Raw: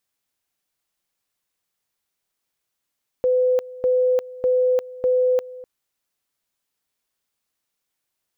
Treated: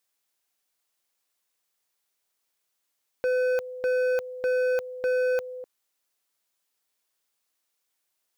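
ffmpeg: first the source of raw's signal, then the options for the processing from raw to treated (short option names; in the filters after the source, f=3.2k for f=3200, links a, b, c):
-f lavfi -i "aevalsrc='pow(10,(-15-19*gte(mod(t,0.6),0.35))/20)*sin(2*PI*505*t)':d=2.4:s=44100"
-af "bass=f=250:g=-10,treble=f=4k:g=2,asoftclip=type=hard:threshold=-23dB"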